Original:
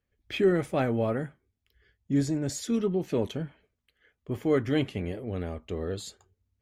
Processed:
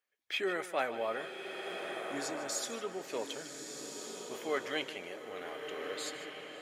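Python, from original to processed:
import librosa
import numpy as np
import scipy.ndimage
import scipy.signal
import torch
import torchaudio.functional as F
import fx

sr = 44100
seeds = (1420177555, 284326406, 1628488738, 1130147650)

y = scipy.signal.sosfilt(scipy.signal.butter(2, 770.0, 'highpass', fs=sr, output='sos'), x)
y = y + 10.0 ** (-14.5 / 20.0) * np.pad(y, (int(152 * sr / 1000.0), 0))[:len(y)]
y = fx.rev_bloom(y, sr, seeds[0], attack_ms=1460, drr_db=4.0)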